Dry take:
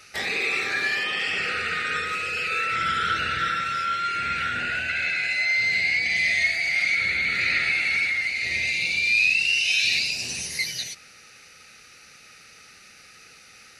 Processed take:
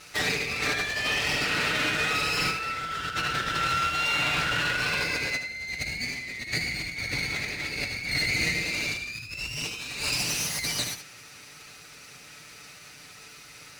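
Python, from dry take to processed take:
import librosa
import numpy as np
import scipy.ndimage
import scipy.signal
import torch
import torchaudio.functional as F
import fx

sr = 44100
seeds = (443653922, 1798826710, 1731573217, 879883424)

y = fx.lower_of_two(x, sr, delay_ms=6.8)
y = scipy.signal.sosfilt(scipy.signal.butter(2, 49.0, 'highpass', fs=sr, output='sos'), y)
y = fx.low_shelf(y, sr, hz=190.0, db=5.0)
y = fx.over_compress(y, sr, threshold_db=-29.0, ratio=-0.5)
y = y + 10.0 ** (-9.5 / 20.0) * np.pad(y, (int(75 * sr / 1000.0), 0))[:len(y)]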